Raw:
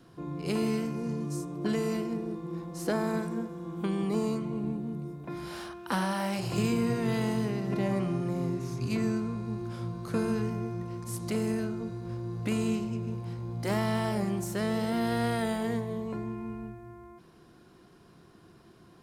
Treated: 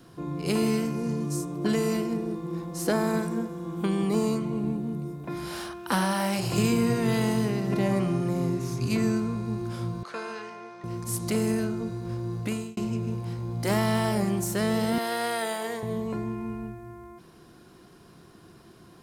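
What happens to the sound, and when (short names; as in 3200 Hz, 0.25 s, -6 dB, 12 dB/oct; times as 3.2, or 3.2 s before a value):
10.03–10.84 BPF 730–4300 Hz
12.34–12.77 fade out
14.98–15.83 HPF 470 Hz
whole clip: high shelf 6100 Hz +6 dB; gain +4 dB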